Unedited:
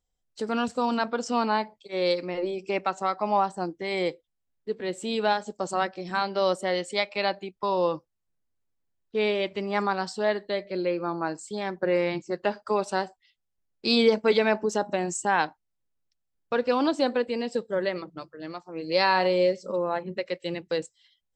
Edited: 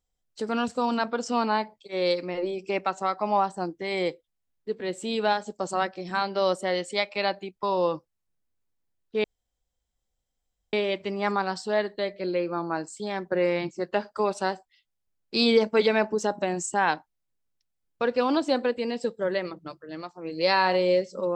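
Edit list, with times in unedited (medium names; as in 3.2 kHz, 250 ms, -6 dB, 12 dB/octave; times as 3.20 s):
9.24 s: insert room tone 1.49 s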